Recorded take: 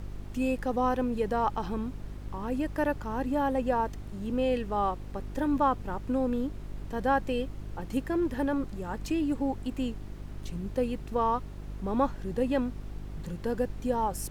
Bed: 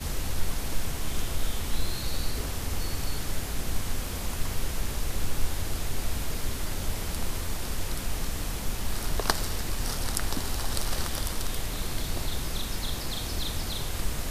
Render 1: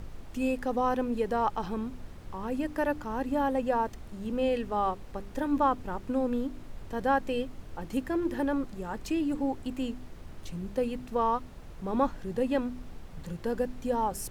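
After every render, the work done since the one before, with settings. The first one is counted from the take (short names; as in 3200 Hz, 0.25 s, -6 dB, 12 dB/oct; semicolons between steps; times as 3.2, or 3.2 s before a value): de-hum 50 Hz, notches 8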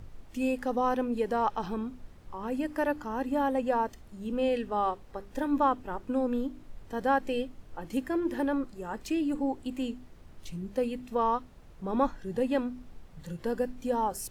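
noise print and reduce 7 dB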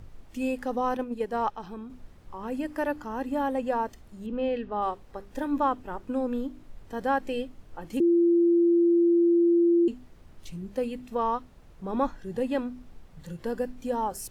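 0.97–1.9 gate -30 dBFS, range -6 dB; 4.26–4.82 air absorption 180 m; 8–9.88 bleep 342 Hz -17.5 dBFS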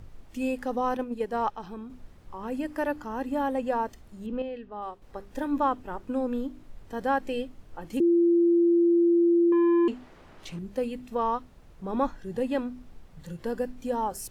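4.42–5.02 gain -8 dB; 9.52–10.59 overdrive pedal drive 18 dB, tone 1900 Hz, clips at -17 dBFS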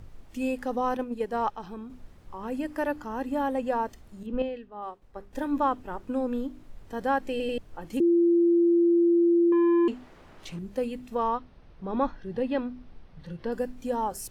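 4.23–5.33 three-band expander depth 100%; 7.31 stutter in place 0.09 s, 3 plays; 11.28–13.52 polynomial smoothing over 15 samples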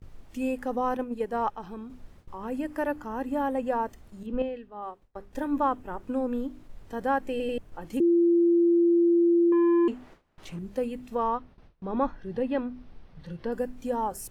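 gate with hold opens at -41 dBFS; dynamic EQ 4400 Hz, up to -6 dB, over -54 dBFS, Q 1.1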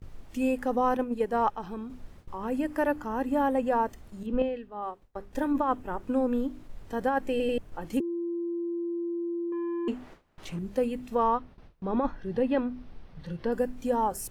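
negative-ratio compressor -25 dBFS, ratio -0.5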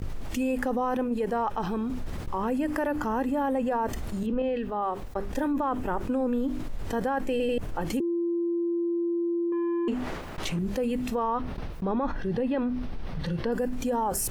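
limiter -21 dBFS, peak gain reduction 7.5 dB; fast leveller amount 70%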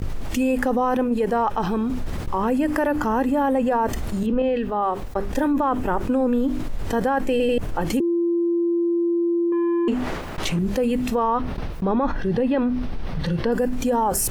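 gain +6.5 dB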